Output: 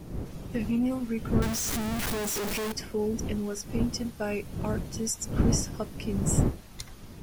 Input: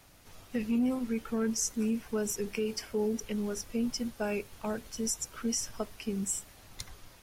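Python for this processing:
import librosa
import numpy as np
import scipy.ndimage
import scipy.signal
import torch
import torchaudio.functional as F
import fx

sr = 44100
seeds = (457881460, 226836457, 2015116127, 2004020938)

y = fx.clip_1bit(x, sr, at=(1.42, 2.72))
y = fx.dmg_wind(y, sr, seeds[0], corner_hz=200.0, level_db=-34.0)
y = y * librosa.db_to_amplitude(1.5)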